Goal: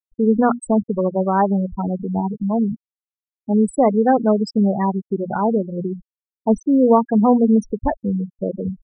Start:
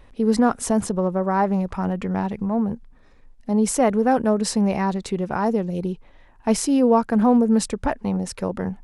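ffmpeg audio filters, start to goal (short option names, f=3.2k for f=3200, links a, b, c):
-af "bandreject=f=60:t=h:w=6,bandreject=f=120:t=h:w=6,bandreject=f=180:t=h:w=6,bandreject=f=240:t=h:w=6,afftfilt=real='re*gte(hypot(re,im),0.158)':imag='im*gte(hypot(re,im),0.158)':win_size=1024:overlap=0.75,volume=3.5dB"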